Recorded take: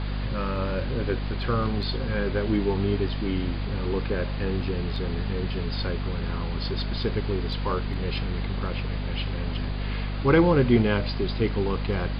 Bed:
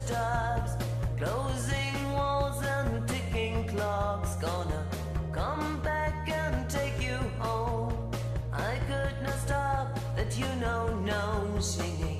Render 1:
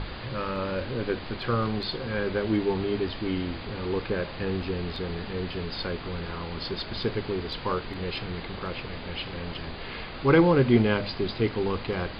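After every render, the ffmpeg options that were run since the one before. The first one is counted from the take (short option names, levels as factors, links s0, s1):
-af "bandreject=f=50:t=h:w=6,bandreject=f=100:t=h:w=6,bandreject=f=150:t=h:w=6,bandreject=f=200:t=h:w=6,bandreject=f=250:t=h:w=6"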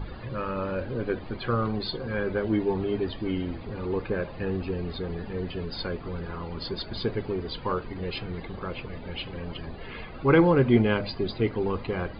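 -af "afftdn=nr=15:nf=-38"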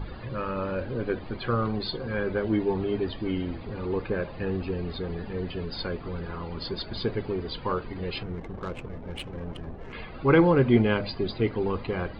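-filter_complex "[0:a]asettb=1/sr,asplit=3[s0][s1][s2];[s0]atrim=end=8.234[s3];[s1]atrim=start=8.23:end=9.93,asetpts=PTS-STARTPTS,afade=t=in:d=0.004:c=qsin,afade=t=out:st=1.696:d=0.004:c=qsin,adynamicsmooth=sensitivity=5:basefreq=810[s4];[s2]atrim=start=9.926[s5];[s3][s4]acrossfade=d=0.004:c1=hsin:c2=qsin[s6];[s6][s5]acrossfade=d=0.004:c1=qsin:c2=hsin"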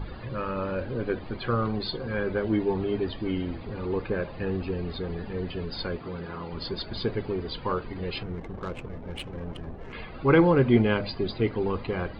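-filter_complex "[0:a]asettb=1/sr,asplit=3[s0][s1][s2];[s0]atrim=end=5.984[s3];[s1]atrim=start=5.98:end=6.53,asetpts=PTS-STARTPTS,afade=t=in:d=0.004:c=qsin,afade=t=out:st=0.546:d=0.004:c=qsin,highpass=110[s4];[s2]atrim=start=6.526[s5];[s3][s4]acrossfade=d=0.004:c1=hsin:c2=qsin[s6];[s6][s5]acrossfade=d=0.004:c1=qsin:c2=hsin"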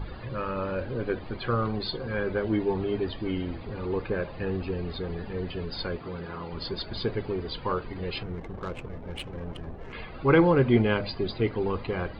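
-af "equalizer=f=230:w=1.5:g=-2"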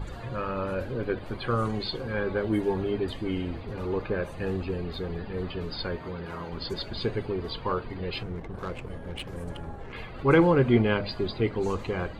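-filter_complex "[1:a]volume=0.133[s0];[0:a][s0]amix=inputs=2:normalize=0"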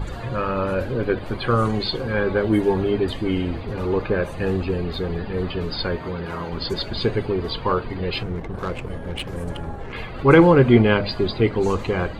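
-af "volume=2.37,alimiter=limit=0.794:level=0:latency=1"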